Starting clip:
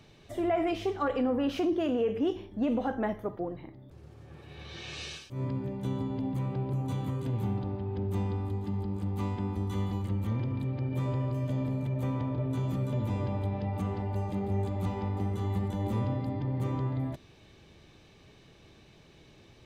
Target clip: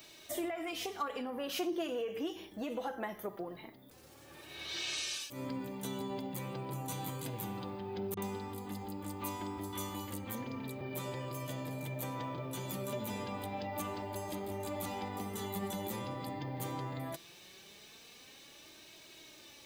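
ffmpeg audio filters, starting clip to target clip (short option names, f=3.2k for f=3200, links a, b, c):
-filter_complex "[0:a]aemphasis=mode=production:type=riaa,acompressor=threshold=-35dB:ratio=12,flanger=delay=3.1:depth=3.2:regen=37:speed=0.21:shape=sinusoidal,asettb=1/sr,asplit=3[a][b][c];[a]atrim=end=8.144[d];[b]atrim=start=8.14:end=10.81,asetpts=PTS-STARTPTS,afade=t=in:d=0.004:c=qsin,afade=t=out:st=2.666:d=0.004:c=qsin,acrossover=split=150|3600[e][f][g];[f]adelay=30[h];[g]adelay=80[i];[e][h][i]amix=inputs=3:normalize=0,atrim=end_sample=117747[j];[c]atrim=start=10.806[k];[d][j]acrossfade=d=0.004:c1=hsin:c2=qsin[l];[l][k]acrossfade=d=0.004:c1=qsin:c2=hsin,volume=5dB"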